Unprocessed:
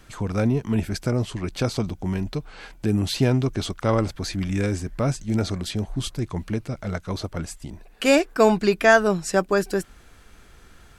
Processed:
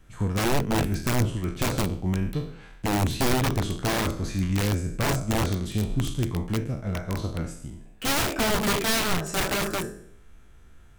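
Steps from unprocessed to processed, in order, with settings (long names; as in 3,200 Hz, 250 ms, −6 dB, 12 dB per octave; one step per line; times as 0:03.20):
peak hold with a decay on every bin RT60 0.75 s
hard clipping −15.5 dBFS, distortion −10 dB
parametric band 4,600 Hz −7 dB 0.41 octaves
wrap-around overflow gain 16 dB
low-shelf EQ 250 Hz +8.5 dB
tuned comb filter 330 Hz, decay 0.35 s, harmonics all, mix 40%
expander for the loud parts 1.5 to 1, over −33 dBFS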